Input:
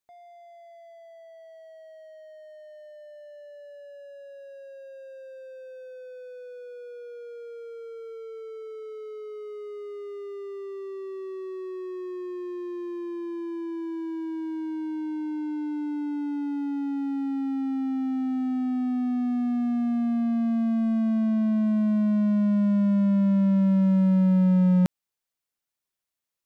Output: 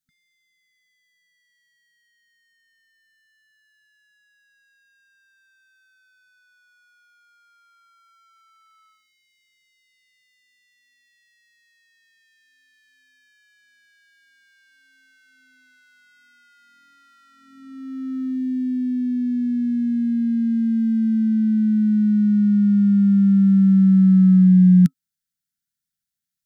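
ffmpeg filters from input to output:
-af "afftfilt=real='re*(1-between(b*sr/4096,260,1300))':imag='im*(1-between(b*sr/4096,260,1300))':win_size=4096:overlap=0.75,equalizer=f=160:t=o:w=0.67:g=8,equalizer=f=1000:t=o:w=0.67:g=-4,equalizer=f=2500:t=o:w=0.67:g=-8,volume=1.26"

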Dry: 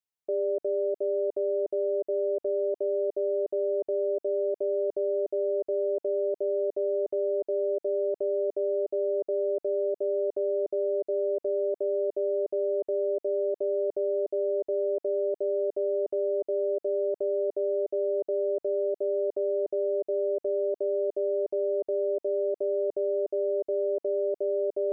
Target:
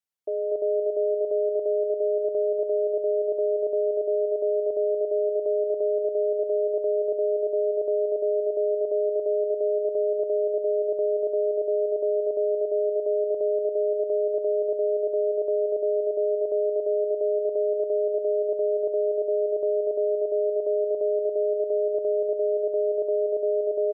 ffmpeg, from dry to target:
-filter_complex "[0:a]asetrate=45938,aresample=44100,asplit=2[s0][s1];[s1]aecho=0:1:241|482|723|964:0.596|0.185|0.0572|0.0177[s2];[s0][s2]amix=inputs=2:normalize=0"

